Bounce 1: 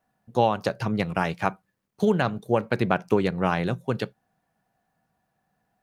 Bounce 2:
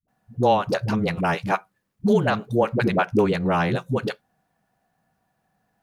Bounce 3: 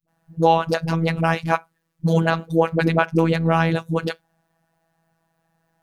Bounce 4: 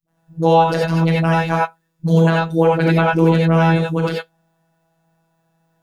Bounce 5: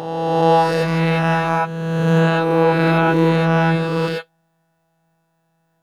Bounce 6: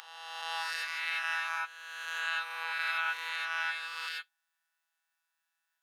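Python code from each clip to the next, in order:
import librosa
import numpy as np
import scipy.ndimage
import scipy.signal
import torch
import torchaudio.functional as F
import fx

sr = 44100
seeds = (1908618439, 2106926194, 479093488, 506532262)

y1 = fx.dispersion(x, sr, late='highs', ms=82.0, hz=310.0)
y1 = F.gain(torch.from_numpy(y1), 3.0).numpy()
y2 = fx.robotise(y1, sr, hz=164.0)
y2 = F.gain(torch.from_numpy(y2), 4.5).numpy()
y3 = fx.rev_gated(y2, sr, seeds[0], gate_ms=110, shape='rising', drr_db=-4.0)
y3 = F.gain(torch.from_numpy(y3), -2.0).numpy()
y4 = fx.spec_swells(y3, sr, rise_s=1.87)
y4 = F.gain(torch.from_numpy(y4), -3.0).numpy()
y5 = scipy.signal.sosfilt(scipy.signal.butter(4, 1400.0, 'highpass', fs=sr, output='sos'), y4)
y5 = F.gain(torch.from_numpy(y5), -7.0).numpy()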